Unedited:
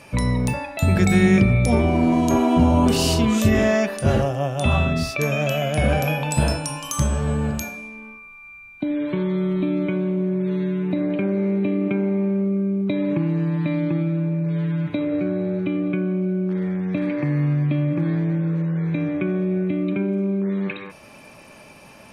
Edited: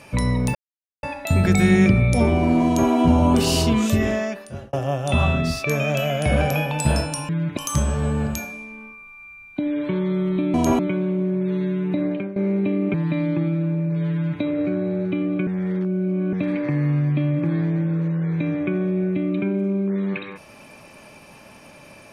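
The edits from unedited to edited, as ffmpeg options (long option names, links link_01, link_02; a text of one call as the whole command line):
ffmpeg -i in.wav -filter_complex "[0:a]asplit=11[link_01][link_02][link_03][link_04][link_05][link_06][link_07][link_08][link_09][link_10][link_11];[link_01]atrim=end=0.55,asetpts=PTS-STARTPTS,afade=type=out:start_time=0.546:duration=0.004:curve=hsin,apad=pad_dur=0.48[link_12];[link_02]atrim=start=0.55:end=4.25,asetpts=PTS-STARTPTS,afade=type=in:duration=0.004:curve=hsin,afade=type=out:start_time=2.7:duration=1[link_13];[link_03]atrim=start=4.25:end=6.812,asetpts=PTS-STARTPTS,afade=type=in:duration=0.004:curve=hsin[link_14];[link_04]atrim=start=14.668:end=14.952[link_15];[link_05]atrim=start=6.808:end=9.782[link_16];[link_06]atrim=start=2.178:end=2.432[link_17];[link_07]atrim=start=9.778:end=11.35,asetpts=PTS-STARTPTS,afade=type=out:start_time=1.282:duration=0.29:silence=0.177828[link_18];[link_08]atrim=start=11.35:end=11.932,asetpts=PTS-STARTPTS,afade=type=in:duration=0.004:curve=hsin:silence=0.177828[link_19];[link_09]atrim=start=13.478:end=16.012[link_20];[link_10]atrim=start=16.008:end=16.872,asetpts=PTS-STARTPTS,areverse[link_21];[link_11]atrim=start=16.868[link_22];[link_12][link_13][link_14]concat=n=3:v=0:a=1[link_23];[link_23][link_15]acrossfade=duration=0.004:curve1=hsin:curve2=hsin[link_24];[link_24][link_16]acrossfade=duration=0.004:curve1=hsin:curve2=hsin[link_25];[link_25][link_17]acrossfade=duration=0.004:curve1=hsin:curve2=hsin[link_26];[link_18][link_19]concat=n=2:v=0:a=1[link_27];[link_26][link_27]acrossfade=duration=0.004:curve1=hsin:curve2=hsin[link_28];[link_28][link_20]acrossfade=duration=0.004:curve1=hsin:curve2=hsin[link_29];[link_29][link_21]acrossfade=duration=0.004:curve1=hsin:curve2=hsin[link_30];[link_30][link_22]acrossfade=duration=0.004:curve1=hsin:curve2=hsin" out.wav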